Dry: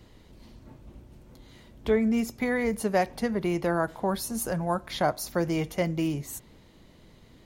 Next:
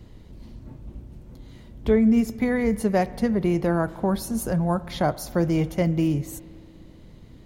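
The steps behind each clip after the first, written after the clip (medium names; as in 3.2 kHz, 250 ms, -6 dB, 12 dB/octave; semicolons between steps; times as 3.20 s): bass shelf 360 Hz +10.5 dB; spring tank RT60 2.5 s, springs 59 ms, chirp 25 ms, DRR 18 dB; trim -1 dB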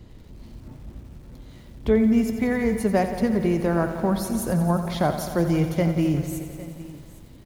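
delay 810 ms -18 dB; bit-crushed delay 88 ms, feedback 80%, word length 8-bit, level -11 dB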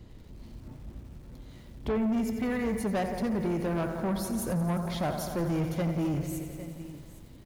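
saturation -21 dBFS, distortion -11 dB; trim -3.5 dB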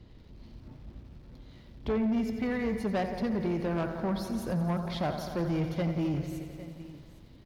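resonant high shelf 6.1 kHz -8.5 dB, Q 1.5; Chebyshev shaper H 3 -20 dB, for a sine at -23.5 dBFS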